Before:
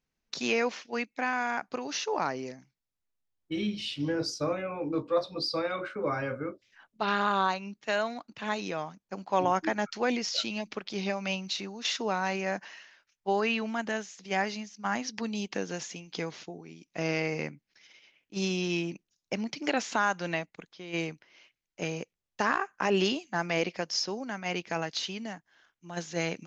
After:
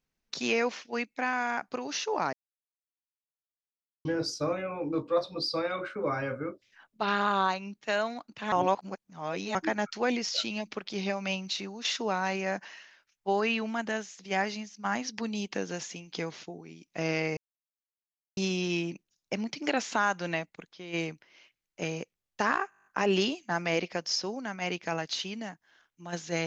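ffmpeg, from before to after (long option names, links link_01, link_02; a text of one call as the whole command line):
ffmpeg -i in.wav -filter_complex "[0:a]asplit=15[link_01][link_02][link_03][link_04][link_05][link_06][link_07][link_08][link_09][link_10][link_11][link_12][link_13][link_14][link_15];[link_01]atrim=end=2.33,asetpts=PTS-STARTPTS,afade=type=out:start_time=2.326:duration=0.004:curve=hsin[link_16];[link_02]atrim=start=2.33:end=4.05,asetpts=PTS-STARTPTS,volume=0[link_17];[link_03]atrim=start=4.05:end=8.522,asetpts=PTS-STARTPTS,afade=type=in:duration=0.004:curve=hsin[link_18];[link_04]atrim=start=8.518:end=9.552,asetpts=PTS-STARTPTS,areverse[link_19];[link_05]atrim=start=9.548:end=17.37,asetpts=PTS-STARTPTS,afade=type=out:start_time=7.818:duration=0.004:curve=hsin[link_20];[link_06]atrim=start=17.37:end=18.37,asetpts=PTS-STARTPTS,volume=0[link_21];[link_07]atrim=start=18.37:end=22.722,asetpts=PTS-STARTPTS,afade=type=in:duration=0.004:curve=hsin[link_22];[link_08]atrim=start=22.698:end=22.722[link_23];[link_09]atrim=start=22.698:end=22.722[link_24];[link_10]atrim=start=22.698:end=22.722[link_25];[link_11]atrim=start=22.698:end=22.722[link_26];[link_12]atrim=start=22.698:end=22.722[link_27];[link_13]atrim=start=22.698:end=22.722[link_28];[link_14]atrim=start=22.698:end=22.722[link_29];[link_15]atrim=start=22.698[link_30];[link_16][link_17][link_18]concat=n=3:v=0:a=1[link_31];[link_31][link_19]acrossfade=duration=0.004:curve1=hsin:curve2=hsin[link_32];[link_20][link_21][link_22]concat=n=3:v=0:a=1[link_33];[link_32][link_33]acrossfade=duration=0.004:curve1=hsin:curve2=hsin[link_34];[link_34][link_23]acrossfade=duration=0.004:curve1=hsin:curve2=hsin[link_35];[link_35][link_24]acrossfade=duration=0.004:curve1=hsin:curve2=hsin[link_36];[link_36][link_25]acrossfade=duration=0.004:curve1=hsin:curve2=hsin[link_37];[link_37][link_26]acrossfade=duration=0.004:curve1=hsin:curve2=hsin[link_38];[link_38][link_27]acrossfade=duration=0.004:curve1=hsin:curve2=hsin[link_39];[link_39][link_28]acrossfade=duration=0.004:curve1=hsin:curve2=hsin[link_40];[link_40][link_29]acrossfade=duration=0.004:curve1=hsin:curve2=hsin[link_41];[link_41][link_30]acrossfade=duration=0.004:curve1=hsin:curve2=hsin" out.wav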